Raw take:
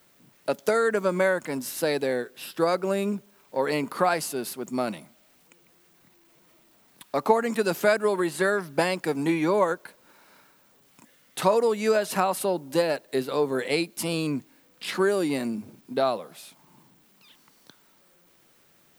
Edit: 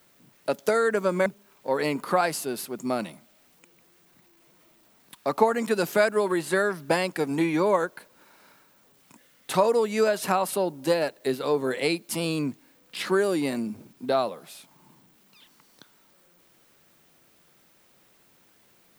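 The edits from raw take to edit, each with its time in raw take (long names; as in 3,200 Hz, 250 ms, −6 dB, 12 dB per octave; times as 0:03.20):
0:01.26–0:03.14: remove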